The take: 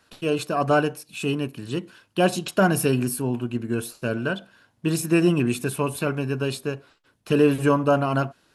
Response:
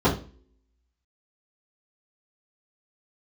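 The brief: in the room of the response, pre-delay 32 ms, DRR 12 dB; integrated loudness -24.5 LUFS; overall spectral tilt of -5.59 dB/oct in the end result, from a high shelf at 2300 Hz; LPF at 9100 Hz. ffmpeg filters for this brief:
-filter_complex "[0:a]lowpass=9.1k,highshelf=f=2.3k:g=5,asplit=2[a][b];[1:a]atrim=start_sample=2205,adelay=32[c];[b][c]afir=irnorm=-1:irlink=0,volume=-30dB[d];[a][d]amix=inputs=2:normalize=0,volume=-2.5dB"

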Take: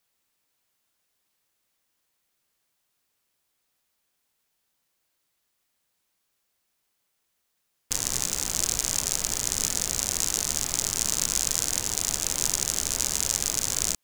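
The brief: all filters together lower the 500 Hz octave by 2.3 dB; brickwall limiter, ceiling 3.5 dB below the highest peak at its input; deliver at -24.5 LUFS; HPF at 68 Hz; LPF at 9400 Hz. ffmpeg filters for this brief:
-af "highpass=68,lowpass=9.4k,equalizer=f=500:t=o:g=-3,volume=3dB,alimiter=limit=-4dB:level=0:latency=1"

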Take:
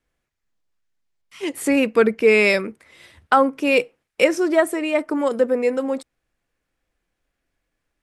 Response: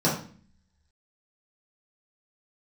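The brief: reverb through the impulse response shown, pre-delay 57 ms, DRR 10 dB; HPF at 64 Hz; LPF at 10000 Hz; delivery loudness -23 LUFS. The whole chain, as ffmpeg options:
-filter_complex "[0:a]highpass=64,lowpass=10k,asplit=2[a][b];[1:a]atrim=start_sample=2205,adelay=57[c];[b][c]afir=irnorm=-1:irlink=0,volume=-24dB[d];[a][d]amix=inputs=2:normalize=0,volume=-5dB"

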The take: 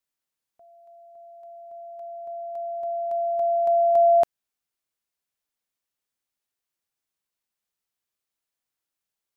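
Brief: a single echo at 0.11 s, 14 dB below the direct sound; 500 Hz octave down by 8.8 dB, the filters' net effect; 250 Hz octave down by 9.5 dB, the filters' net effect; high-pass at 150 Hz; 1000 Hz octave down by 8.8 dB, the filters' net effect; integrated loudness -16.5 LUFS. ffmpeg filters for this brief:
-af "highpass=150,equalizer=f=250:t=o:g=-9,equalizer=f=500:t=o:g=-7.5,equalizer=f=1k:t=o:g=-8.5,aecho=1:1:110:0.2,volume=14.5dB"

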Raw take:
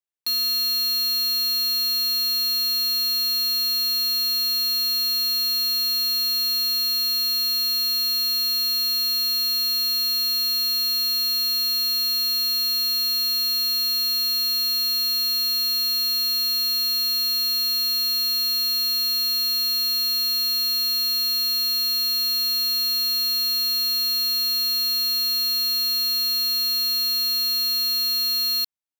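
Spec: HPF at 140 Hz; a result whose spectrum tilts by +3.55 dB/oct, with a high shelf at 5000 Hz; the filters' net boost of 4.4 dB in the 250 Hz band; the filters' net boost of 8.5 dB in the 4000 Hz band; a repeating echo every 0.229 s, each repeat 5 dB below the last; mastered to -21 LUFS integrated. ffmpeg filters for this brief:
-af "highpass=140,equalizer=f=250:t=o:g=5,equalizer=f=4k:t=o:g=6,highshelf=f=5k:g=6.5,aecho=1:1:229|458|687|916|1145|1374|1603:0.562|0.315|0.176|0.0988|0.0553|0.031|0.0173,volume=-7.5dB"

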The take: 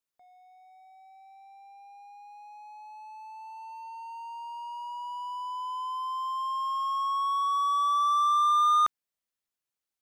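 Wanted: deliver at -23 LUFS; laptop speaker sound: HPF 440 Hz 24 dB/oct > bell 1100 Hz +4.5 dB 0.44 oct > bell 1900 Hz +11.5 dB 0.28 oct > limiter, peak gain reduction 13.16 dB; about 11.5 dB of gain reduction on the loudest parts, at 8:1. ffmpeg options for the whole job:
-af "acompressor=threshold=-33dB:ratio=8,highpass=f=440:w=0.5412,highpass=f=440:w=1.3066,equalizer=f=1.1k:t=o:w=0.44:g=4.5,equalizer=f=1.9k:t=o:w=0.28:g=11.5,volume=21.5dB,alimiter=limit=-19dB:level=0:latency=1"

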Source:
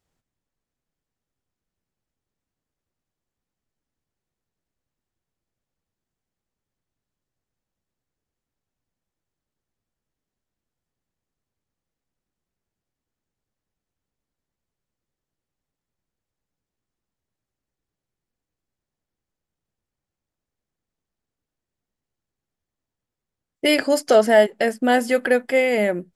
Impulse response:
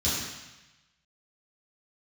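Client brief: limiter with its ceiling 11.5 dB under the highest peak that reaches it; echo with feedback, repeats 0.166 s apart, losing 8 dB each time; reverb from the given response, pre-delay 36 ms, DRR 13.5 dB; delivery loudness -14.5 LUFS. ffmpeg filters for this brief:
-filter_complex "[0:a]alimiter=limit=-15.5dB:level=0:latency=1,aecho=1:1:166|332|498|664|830:0.398|0.159|0.0637|0.0255|0.0102,asplit=2[a][b];[1:a]atrim=start_sample=2205,adelay=36[c];[b][c]afir=irnorm=-1:irlink=0,volume=-23.5dB[d];[a][d]amix=inputs=2:normalize=0,volume=10dB"

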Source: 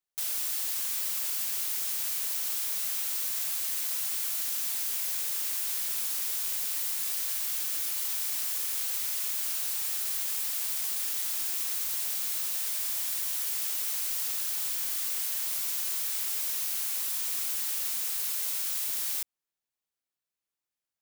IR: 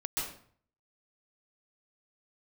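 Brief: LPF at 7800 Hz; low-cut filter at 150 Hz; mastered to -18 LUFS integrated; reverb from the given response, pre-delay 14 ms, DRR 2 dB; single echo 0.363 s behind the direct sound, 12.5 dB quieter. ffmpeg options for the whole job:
-filter_complex "[0:a]highpass=150,lowpass=7.8k,aecho=1:1:363:0.237,asplit=2[a][b];[1:a]atrim=start_sample=2205,adelay=14[c];[b][c]afir=irnorm=-1:irlink=0,volume=-6.5dB[d];[a][d]amix=inputs=2:normalize=0,volume=16.5dB"

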